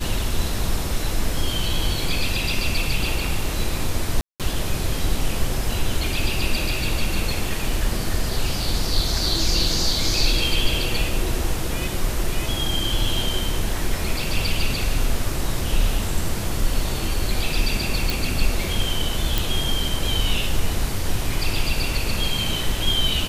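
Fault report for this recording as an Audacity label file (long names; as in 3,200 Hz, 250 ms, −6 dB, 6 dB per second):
4.210000	4.400000	drop-out 187 ms
18.100000	18.100000	click
19.380000	19.380000	click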